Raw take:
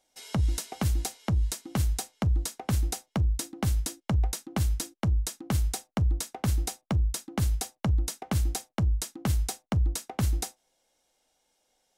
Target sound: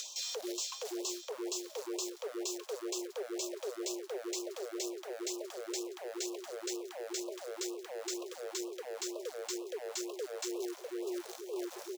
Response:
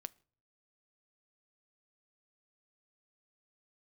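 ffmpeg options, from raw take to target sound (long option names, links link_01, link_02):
-filter_complex "[0:a]asplit=2[link_01][link_02];[link_02]adelay=649,lowpass=frequency=1700:poles=1,volume=-19.5dB,asplit=2[link_03][link_04];[link_04]adelay=649,lowpass=frequency=1700:poles=1,volume=0.5,asplit=2[link_05][link_06];[link_06]adelay=649,lowpass=frequency=1700:poles=1,volume=0.5,asplit=2[link_07][link_08];[link_08]adelay=649,lowpass=frequency=1700:poles=1,volume=0.5[link_09];[link_01][link_03][link_05][link_07][link_09]amix=inputs=5:normalize=0,alimiter=limit=-22dB:level=0:latency=1:release=350,asubboost=boost=11:cutoff=200,acompressor=mode=upward:threshold=-40dB:ratio=2.5,aexciter=amount=5.7:drive=5.8:freq=2500,aresample=16000,asoftclip=type=tanh:threshold=-23dB,aresample=44100,highshelf=frequency=6300:gain=-6,acrusher=bits=3:mode=log:mix=0:aa=0.000001,highpass=81,afreqshift=300,areverse,acompressor=threshold=-41dB:ratio=10,areverse,afftfilt=real='re*(1-between(b*sr/1024,270*pow(1800/270,0.5+0.5*sin(2*PI*2.1*pts/sr))/1.41,270*pow(1800/270,0.5+0.5*sin(2*PI*2.1*pts/sr))*1.41))':imag='im*(1-between(b*sr/1024,270*pow(1800/270,0.5+0.5*sin(2*PI*2.1*pts/sr))/1.41,270*pow(1800/270,0.5+0.5*sin(2*PI*2.1*pts/sr))*1.41))':win_size=1024:overlap=0.75,volume=5.5dB"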